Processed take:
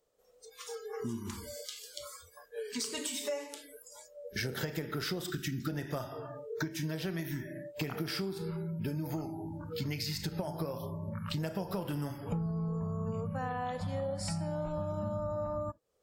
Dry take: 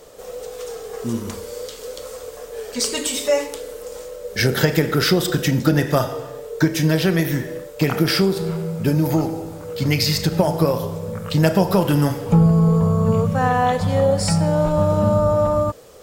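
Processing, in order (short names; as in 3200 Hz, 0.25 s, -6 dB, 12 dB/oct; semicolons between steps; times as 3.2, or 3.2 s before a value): spectral noise reduction 28 dB; spectral gain 5.3–5.68, 440–1100 Hz -30 dB; compressor 4:1, threshold -31 dBFS, peak gain reduction 17 dB; gain -4.5 dB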